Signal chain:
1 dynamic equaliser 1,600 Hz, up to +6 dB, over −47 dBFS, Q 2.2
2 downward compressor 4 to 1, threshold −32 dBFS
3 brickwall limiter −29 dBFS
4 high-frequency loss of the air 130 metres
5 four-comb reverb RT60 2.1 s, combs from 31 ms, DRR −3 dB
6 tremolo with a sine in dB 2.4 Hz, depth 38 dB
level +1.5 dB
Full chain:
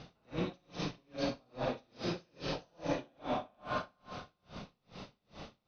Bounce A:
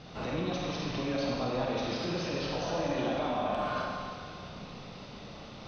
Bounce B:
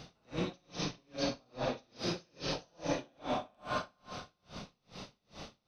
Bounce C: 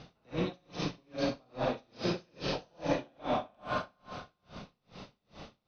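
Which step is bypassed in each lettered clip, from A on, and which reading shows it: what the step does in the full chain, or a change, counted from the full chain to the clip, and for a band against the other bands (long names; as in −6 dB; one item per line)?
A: 6, change in crest factor −5.0 dB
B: 4, 4 kHz band +3.5 dB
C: 3, average gain reduction 2.0 dB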